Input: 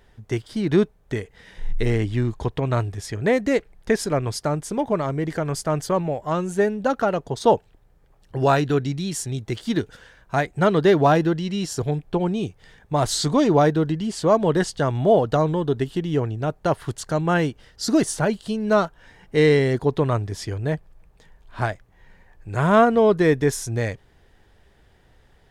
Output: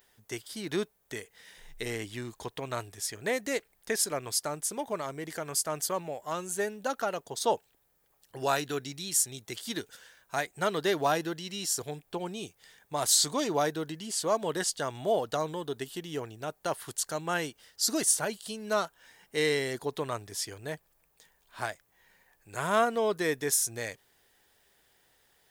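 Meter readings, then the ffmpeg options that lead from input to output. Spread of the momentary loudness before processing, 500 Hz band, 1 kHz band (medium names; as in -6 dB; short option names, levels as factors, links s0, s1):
11 LU, -11.0 dB, -9.0 dB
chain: -af "aemphasis=mode=production:type=riaa,volume=0.376"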